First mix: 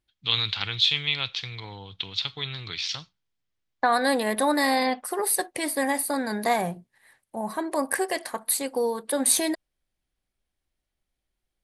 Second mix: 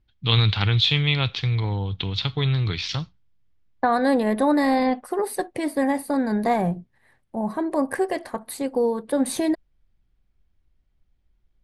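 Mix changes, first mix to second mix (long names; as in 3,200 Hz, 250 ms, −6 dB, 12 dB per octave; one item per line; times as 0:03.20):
first voice +7.0 dB
master: add spectral tilt −3.5 dB per octave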